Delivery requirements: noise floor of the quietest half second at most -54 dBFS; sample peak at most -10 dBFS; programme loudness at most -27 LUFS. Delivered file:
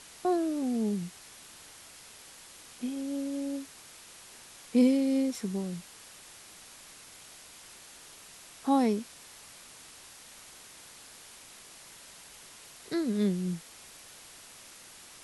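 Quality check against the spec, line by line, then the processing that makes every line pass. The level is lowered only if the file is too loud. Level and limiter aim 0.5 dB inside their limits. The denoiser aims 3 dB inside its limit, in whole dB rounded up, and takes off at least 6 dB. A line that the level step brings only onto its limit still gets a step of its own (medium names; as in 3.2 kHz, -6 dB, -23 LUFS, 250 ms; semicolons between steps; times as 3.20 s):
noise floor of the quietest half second -51 dBFS: fail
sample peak -13.5 dBFS: pass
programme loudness -30.5 LUFS: pass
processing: noise reduction 6 dB, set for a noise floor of -51 dBFS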